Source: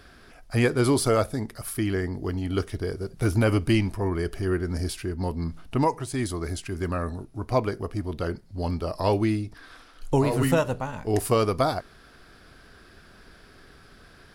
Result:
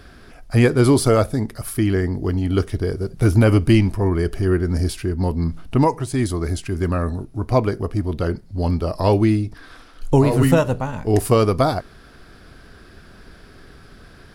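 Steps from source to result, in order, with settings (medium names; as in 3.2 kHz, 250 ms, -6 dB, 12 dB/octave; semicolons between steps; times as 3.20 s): bass shelf 430 Hz +5.5 dB; trim +3.5 dB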